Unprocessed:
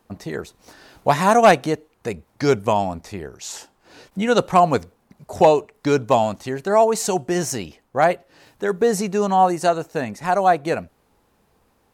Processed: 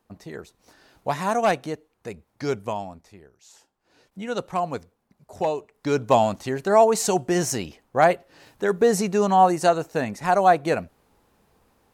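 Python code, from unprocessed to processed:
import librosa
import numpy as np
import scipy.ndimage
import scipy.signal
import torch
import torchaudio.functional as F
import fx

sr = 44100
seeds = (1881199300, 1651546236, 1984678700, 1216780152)

y = fx.gain(x, sr, db=fx.line((2.63, -8.5), (3.41, -20.0), (4.28, -11.0), (5.54, -11.0), (6.17, -0.5)))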